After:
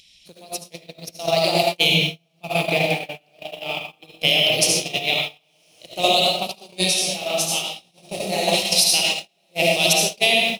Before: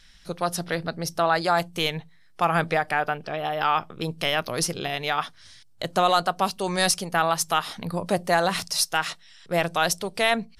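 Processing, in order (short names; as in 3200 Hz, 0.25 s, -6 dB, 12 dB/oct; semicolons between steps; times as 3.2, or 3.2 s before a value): EQ curve 670 Hz 0 dB, 1600 Hz -24 dB, 2400 Hz +11 dB, 4900 Hz +7 dB; on a send: diffused feedback echo 1.052 s, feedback 46%, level -13 dB; on the sum: digital reverb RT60 1.3 s, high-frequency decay 0.8×, pre-delay 30 ms, DRR -3.5 dB; in parallel at -5 dB: bit-crush 5-bit; on the sum: gate -13 dBFS, range -45 dB; HPF 79 Hz 12 dB/oct; upward compressor, threshold -24 dBFS; 1.89–2.49 bell 140 Hz +10.5 dB 1.4 oct; compressor 5:1, threshold -14 dBFS, peak gain reduction 8.5 dB; 6.77–8.46 detuned doubles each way 26 cents -> 45 cents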